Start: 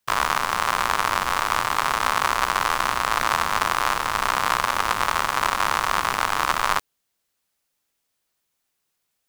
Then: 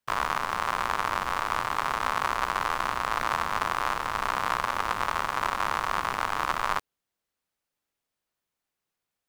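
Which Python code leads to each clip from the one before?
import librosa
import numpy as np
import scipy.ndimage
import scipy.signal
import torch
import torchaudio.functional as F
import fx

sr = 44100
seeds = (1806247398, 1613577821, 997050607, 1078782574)

y = fx.high_shelf(x, sr, hz=3100.0, db=-8.0)
y = F.gain(torch.from_numpy(y), -4.5).numpy()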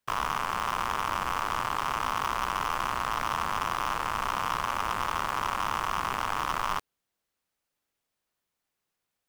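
y = np.clip(x, -10.0 ** (-22.0 / 20.0), 10.0 ** (-22.0 / 20.0))
y = F.gain(torch.from_numpy(y), 1.5).numpy()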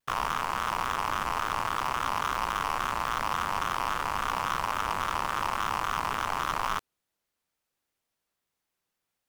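y = fx.vibrato_shape(x, sr, shape='square', rate_hz=3.6, depth_cents=100.0)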